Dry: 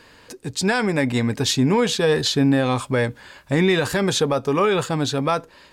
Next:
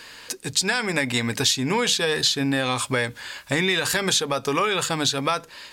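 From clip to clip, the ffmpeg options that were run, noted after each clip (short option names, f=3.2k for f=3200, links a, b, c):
-af "tiltshelf=f=1.2k:g=-7,bandreject=f=50:t=h:w=6,bandreject=f=100:t=h:w=6,bandreject=f=150:t=h:w=6,bandreject=f=200:t=h:w=6,acompressor=threshold=-24dB:ratio=4,volume=4.5dB"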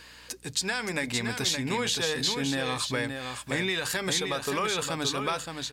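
-af "aeval=exprs='val(0)+0.00251*(sin(2*PI*60*n/s)+sin(2*PI*2*60*n/s)/2+sin(2*PI*3*60*n/s)/3+sin(2*PI*4*60*n/s)/4+sin(2*PI*5*60*n/s)/5)':c=same,aecho=1:1:570:0.501,volume=-7dB"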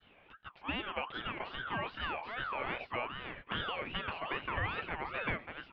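-af "adynamicequalizer=threshold=0.00631:dfrequency=1300:dqfactor=0.74:tfrequency=1300:tqfactor=0.74:attack=5:release=100:ratio=0.375:range=2:mode=boostabove:tftype=bell,highpass=f=220:t=q:w=0.5412,highpass=f=220:t=q:w=1.307,lowpass=f=2.2k:t=q:w=0.5176,lowpass=f=2.2k:t=q:w=0.7071,lowpass=f=2.2k:t=q:w=1.932,afreqshift=-230,aeval=exprs='val(0)*sin(2*PI*1200*n/s+1200*0.3/2.5*sin(2*PI*2.5*n/s))':c=same,volume=-5.5dB"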